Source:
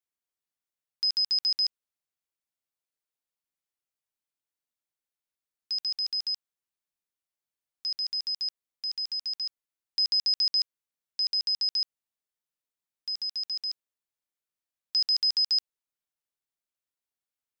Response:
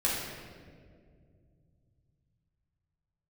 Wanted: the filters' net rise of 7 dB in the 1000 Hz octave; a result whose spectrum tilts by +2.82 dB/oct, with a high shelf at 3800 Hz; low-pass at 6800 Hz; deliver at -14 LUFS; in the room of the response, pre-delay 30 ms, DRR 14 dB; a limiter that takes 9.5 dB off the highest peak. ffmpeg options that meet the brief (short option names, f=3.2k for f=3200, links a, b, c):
-filter_complex "[0:a]lowpass=6.8k,equalizer=f=1k:t=o:g=8.5,highshelf=f=3.8k:g=3.5,alimiter=level_in=4dB:limit=-24dB:level=0:latency=1,volume=-4dB,asplit=2[a][b];[1:a]atrim=start_sample=2205,adelay=30[c];[b][c]afir=irnorm=-1:irlink=0,volume=-23.5dB[d];[a][d]amix=inputs=2:normalize=0,volume=18.5dB"